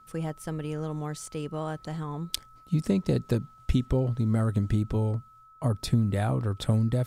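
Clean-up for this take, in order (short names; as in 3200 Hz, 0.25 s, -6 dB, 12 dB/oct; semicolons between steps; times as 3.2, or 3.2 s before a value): notch 1300 Hz, Q 30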